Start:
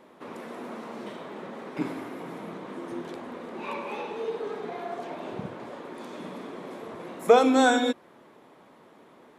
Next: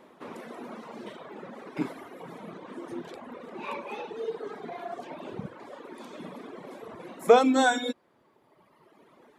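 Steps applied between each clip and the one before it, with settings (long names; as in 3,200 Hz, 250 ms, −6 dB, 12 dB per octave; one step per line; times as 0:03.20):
reverb reduction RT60 1.7 s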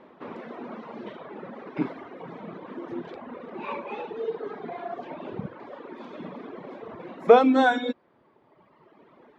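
high-frequency loss of the air 240 metres
level +3.5 dB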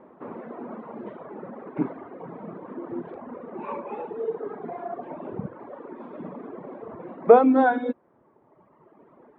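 low-pass filter 1,300 Hz 12 dB per octave
level +1.5 dB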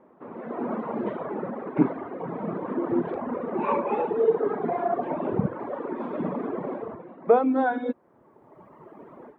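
automatic gain control gain up to 14.5 dB
level −6 dB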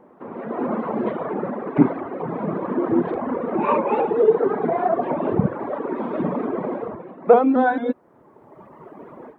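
pitch modulation by a square or saw wave saw up 4.5 Hz, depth 100 cents
level +5.5 dB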